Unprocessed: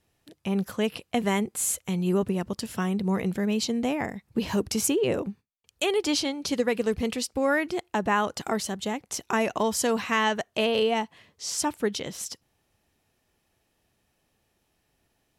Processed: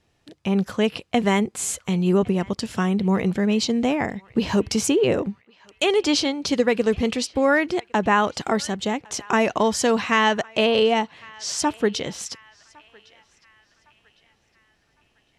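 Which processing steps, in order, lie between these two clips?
low-pass filter 6,900 Hz 12 dB per octave
on a send: feedback echo with a band-pass in the loop 1,108 ms, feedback 49%, band-pass 2,000 Hz, level −22 dB
on the sum: level +5.5 dB

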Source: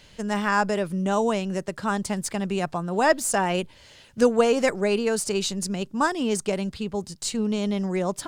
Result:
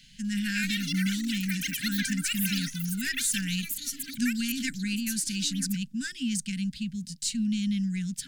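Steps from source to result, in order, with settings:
delay with pitch and tempo change per echo 246 ms, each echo +7 semitones, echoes 3
Chebyshev band-stop filter 270–1,500 Hz, order 4
phaser with its sweep stopped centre 320 Hz, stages 6

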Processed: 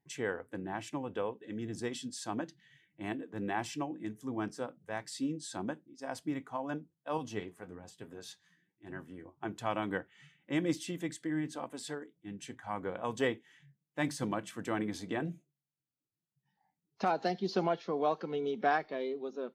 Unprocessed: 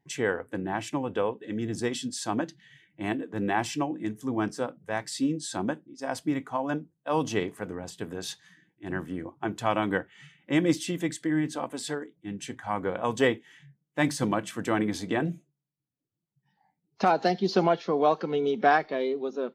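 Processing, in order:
0:07.17–0:09.38: flanger 1.1 Hz, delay 7.2 ms, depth 5.1 ms, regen +50%
level −8 dB

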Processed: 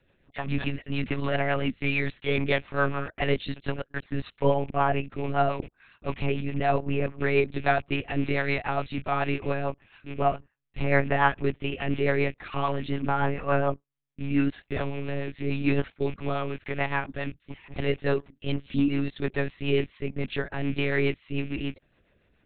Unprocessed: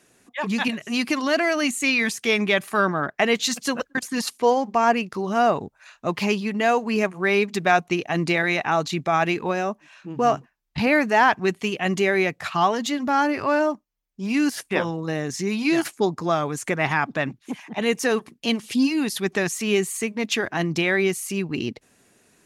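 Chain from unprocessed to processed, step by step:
loose part that buzzes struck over −34 dBFS, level −27 dBFS
harmonic and percussive parts rebalanced harmonic +5 dB
one-pitch LPC vocoder at 8 kHz 140 Hz
rotating-speaker cabinet horn 7 Hz
level −6 dB

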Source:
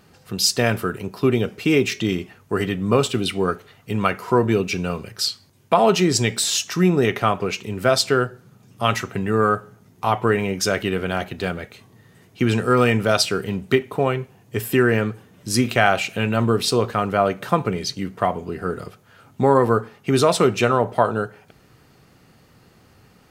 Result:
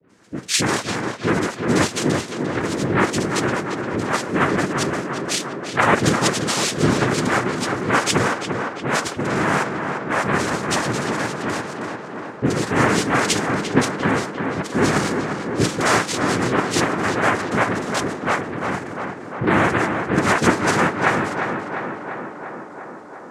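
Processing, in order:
all-pass dispersion highs, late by 97 ms, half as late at 610 Hz
cochlear-implant simulation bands 3
tape delay 348 ms, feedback 81%, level −4.5 dB, low-pass 2,500 Hz
level −1 dB

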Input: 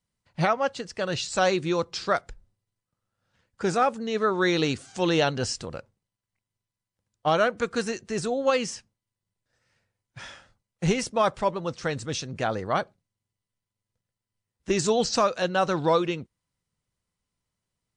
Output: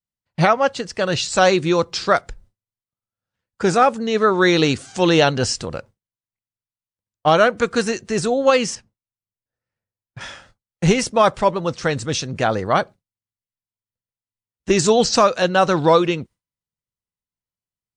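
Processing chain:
noise gate with hold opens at −45 dBFS
0:08.75–0:10.21: high-shelf EQ 2,200 Hz −11.5 dB
level +8 dB

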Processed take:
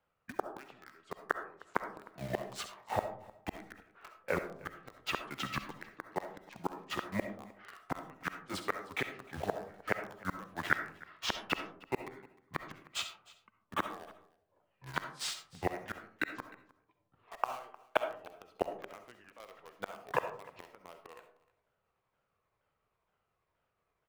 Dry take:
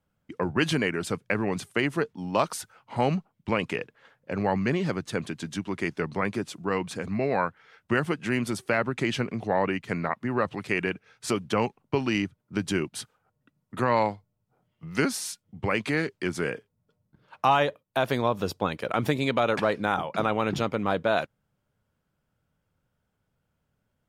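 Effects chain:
pitch shifter swept by a sawtooth −6.5 semitones, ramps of 471 ms
gate with flip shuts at −20 dBFS, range −30 dB
three-way crossover with the lows and the highs turned down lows −14 dB, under 450 Hz, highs −14 dB, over 3,600 Hz
in parallel at −3 dB: bit reduction 8 bits
on the sum: single-tap delay 307 ms −22 dB
on a send at −7.5 dB: convolution reverb RT60 0.55 s, pre-delay 25 ms
on the sum: level +2.5 dB

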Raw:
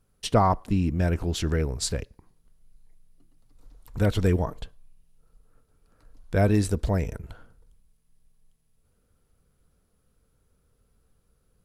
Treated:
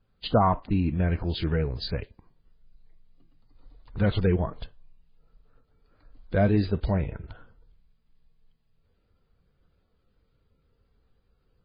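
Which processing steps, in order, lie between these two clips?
spectral magnitudes quantised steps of 15 dB
MP3 16 kbit/s 11,025 Hz

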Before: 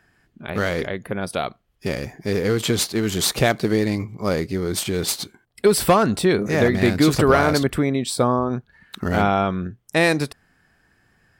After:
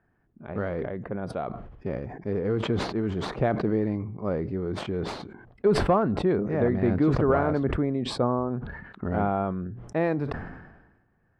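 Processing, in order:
low-pass filter 1,100 Hz 12 dB per octave
level that may fall only so fast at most 50 dB per second
level −6 dB

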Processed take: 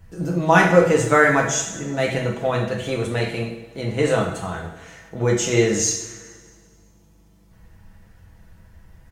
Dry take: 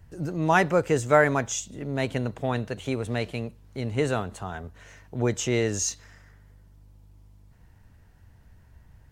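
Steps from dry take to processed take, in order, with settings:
comb filter 6.1 ms, depth 46%
coupled-rooms reverb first 0.65 s, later 2 s, from −16 dB, DRR −1.5 dB
level +2.5 dB

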